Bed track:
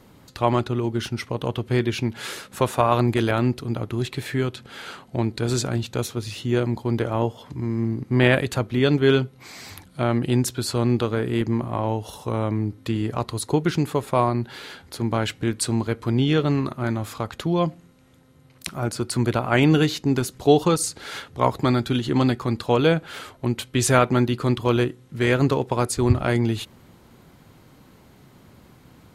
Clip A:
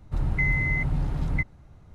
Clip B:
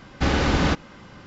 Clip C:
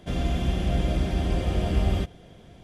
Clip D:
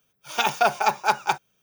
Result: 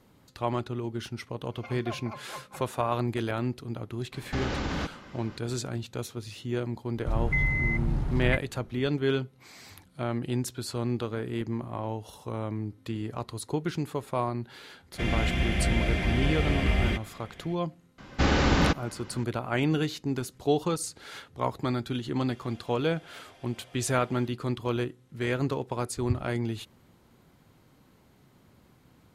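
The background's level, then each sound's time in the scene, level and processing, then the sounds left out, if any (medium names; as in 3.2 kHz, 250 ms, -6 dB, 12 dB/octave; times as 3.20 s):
bed track -9 dB
1.25 s: add D -0.5 dB + pitch-class resonator C, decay 0.14 s
4.12 s: add B -3 dB + compression 4:1, threshold -25 dBFS
6.94 s: add A -2 dB
14.92 s: add C -2.5 dB + peaking EQ 2.1 kHz +15 dB 0.89 oct
17.98 s: add B -2 dB
22.24 s: add C -17.5 dB + high-pass 720 Hz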